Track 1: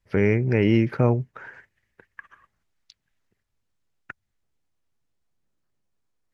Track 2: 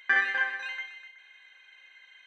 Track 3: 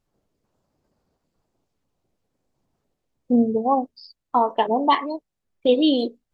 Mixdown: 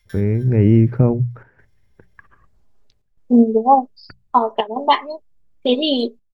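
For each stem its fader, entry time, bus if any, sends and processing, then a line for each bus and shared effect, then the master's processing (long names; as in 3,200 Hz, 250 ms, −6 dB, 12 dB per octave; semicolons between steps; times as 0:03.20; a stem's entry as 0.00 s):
−9.0 dB, 0.00 s, no send, spectral tilt −4.5 dB per octave
−16.5 dB, 0.00 s, no send, samples sorted by size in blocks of 8 samples; comb filter 5.7 ms, depth 65%; automatic ducking −17 dB, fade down 0.25 s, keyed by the first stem
+0.5 dB, 0.00 s, no send, high-pass filter 240 Hz; comb filter 4.9 ms, depth 64%; expander for the loud parts 1.5 to 1, over −29 dBFS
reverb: not used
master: mains-hum notches 60/120/180 Hz; automatic gain control gain up to 8.5 dB; square-wave tremolo 0.63 Hz, depth 65%, duty 90%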